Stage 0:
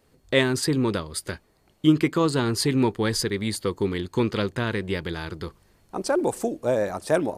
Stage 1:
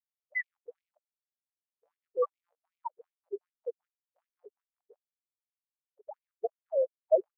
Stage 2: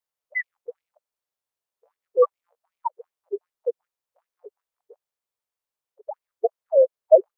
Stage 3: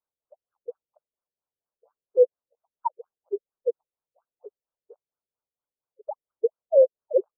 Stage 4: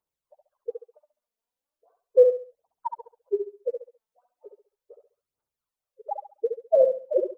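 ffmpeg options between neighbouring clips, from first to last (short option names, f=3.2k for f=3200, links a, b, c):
-af "afftfilt=real='re*gte(hypot(re,im),0.447)':imag='im*gte(hypot(re,im),0.447)':win_size=1024:overlap=0.75,afftfilt=real='re*gte(b*sr/1024,380*pow(2200/380,0.5+0.5*sin(2*PI*2.6*pts/sr)))':imag='im*gte(b*sr/1024,380*pow(2200/380,0.5+0.5*sin(2*PI*2.6*pts/sr)))':win_size=1024:overlap=0.75"
-af "equalizer=f=250:t=o:w=1:g=-5,equalizer=f=500:t=o:w=1:g=7,equalizer=f=1k:t=o:w=1:g=5,volume=4.5dB"
-af "afftfilt=real='re*lt(b*sr/1024,540*pow(1700/540,0.5+0.5*sin(2*PI*4.3*pts/sr)))':imag='im*lt(b*sr/1024,540*pow(1700/540,0.5+0.5*sin(2*PI*4.3*pts/sr)))':win_size=1024:overlap=0.75"
-filter_complex "[0:a]aphaser=in_gain=1:out_gain=1:delay=4.6:decay=0.65:speed=0.37:type=triangular,asplit=2[a][b];[b]aecho=0:1:68|136|204|272:0.501|0.15|0.0451|0.0135[c];[a][c]amix=inputs=2:normalize=0"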